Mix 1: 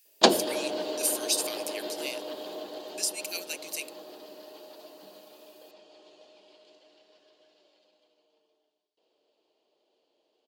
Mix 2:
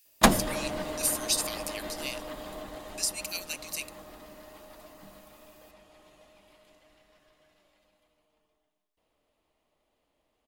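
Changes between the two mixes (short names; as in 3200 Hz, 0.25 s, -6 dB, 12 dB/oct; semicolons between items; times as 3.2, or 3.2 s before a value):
background: remove speaker cabinet 340–7100 Hz, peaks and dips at 370 Hz +4 dB, 1200 Hz -8 dB, 2000 Hz -9 dB, 3100 Hz +5 dB, 4500 Hz +10 dB; master: add bell 420 Hz -8 dB 0.92 oct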